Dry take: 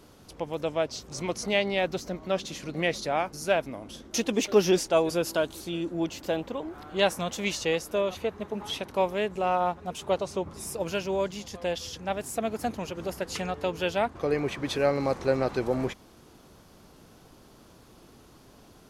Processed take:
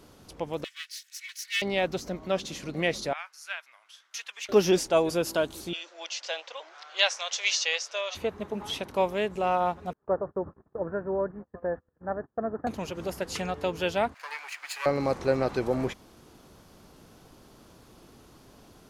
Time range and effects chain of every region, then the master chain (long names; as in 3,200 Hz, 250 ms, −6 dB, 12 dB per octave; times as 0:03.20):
0:00.64–0:01.62: lower of the sound and its delayed copy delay 2.7 ms + elliptic high-pass filter 1,800 Hz, stop band 70 dB
0:03.13–0:04.49: high-pass filter 1,400 Hz 24 dB per octave + spectral tilt −3 dB per octave
0:05.73–0:08.15: elliptic band-pass filter 540–6,000 Hz, stop band 50 dB + tilt shelving filter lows −10 dB, about 1,300 Hz
0:09.93–0:12.67: Chebyshev low-pass with heavy ripple 1,800 Hz, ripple 3 dB + noise gate −44 dBFS, range −30 dB
0:14.14–0:14.86: lower of the sound and its delayed copy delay 0.43 ms + high-pass filter 990 Hz 24 dB per octave
whole clip: no processing